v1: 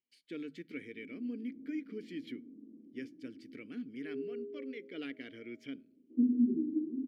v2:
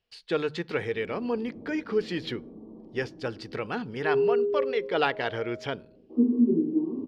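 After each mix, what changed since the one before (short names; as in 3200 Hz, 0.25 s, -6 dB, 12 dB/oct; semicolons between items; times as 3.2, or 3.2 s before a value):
speech: add synth low-pass 3500 Hz, resonance Q 2; master: remove vowel filter i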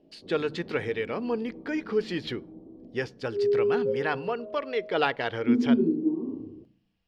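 background: entry -0.70 s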